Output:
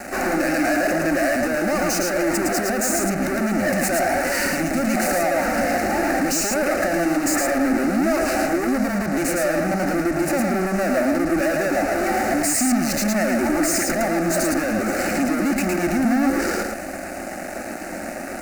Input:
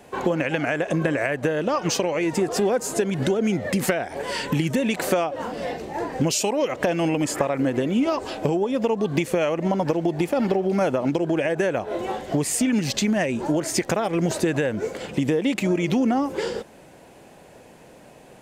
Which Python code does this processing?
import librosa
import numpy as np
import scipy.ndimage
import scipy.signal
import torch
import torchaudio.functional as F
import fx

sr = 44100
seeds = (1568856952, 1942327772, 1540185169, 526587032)

p1 = scipy.ndimage.median_filter(x, 3, mode='constant')
p2 = scipy.signal.sosfilt(scipy.signal.butter(2, 89.0, 'highpass', fs=sr, output='sos'), p1)
p3 = fx.over_compress(p2, sr, threshold_db=-30.0, ratio=-1.0)
p4 = p2 + (p3 * 10.0 ** (0.0 / 20.0))
p5 = fx.fuzz(p4, sr, gain_db=34.0, gate_db=-40.0)
p6 = fx.fixed_phaser(p5, sr, hz=670.0, stages=8)
p7 = p6 + fx.echo_single(p6, sr, ms=111, db=-3.0, dry=0)
y = p7 * 10.0 ** (-5.0 / 20.0)